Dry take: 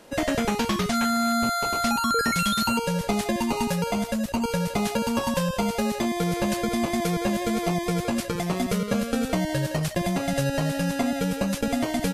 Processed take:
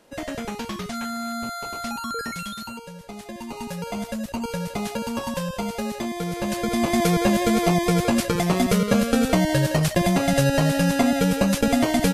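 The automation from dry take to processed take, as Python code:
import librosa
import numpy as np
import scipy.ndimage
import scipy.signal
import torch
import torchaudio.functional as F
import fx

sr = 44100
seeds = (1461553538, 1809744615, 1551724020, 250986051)

y = fx.gain(x, sr, db=fx.line((2.22, -6.5), (2.99, -15.0), (4.03, -3.0), (6.34, -3.0), (7.01, 5.5)))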